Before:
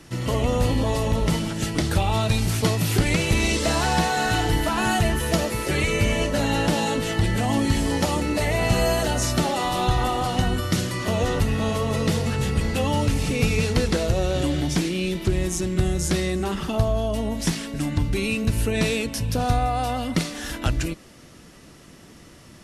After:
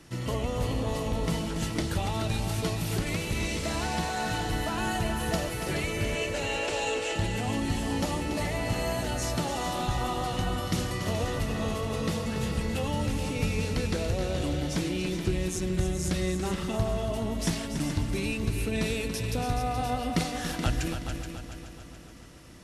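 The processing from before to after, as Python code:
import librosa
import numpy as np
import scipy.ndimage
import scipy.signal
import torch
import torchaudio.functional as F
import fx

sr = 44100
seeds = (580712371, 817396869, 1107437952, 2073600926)

p1 = fx.rider(x, sr, range_db=10, speed_s=0.5)
p2 = fx.cabinet(p1, sr, low_hz=350.0, low_slope=24, high_hz=9400.0, hz=(450.0, 2600.0, 7400.0), db=(6, 9, 6), at=(6.15, 7.15))
p3 = p2 + fx.echo_heads(p2, sr, ms=142, heads='second and third', feedback_pct=51, wet_db=-9, dry=0)
y = F.gain(torch.from_numpy(p3), -8.0).numpy()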